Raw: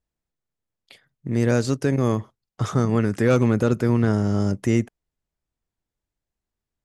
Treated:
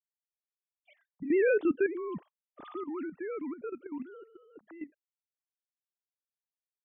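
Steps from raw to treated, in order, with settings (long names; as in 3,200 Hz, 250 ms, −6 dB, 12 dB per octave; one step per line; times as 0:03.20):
three sine waves on the formant tracks
source passing by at 0:01.50, 10 m/s, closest 2.9 metres
output level in coarse steps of 12 dB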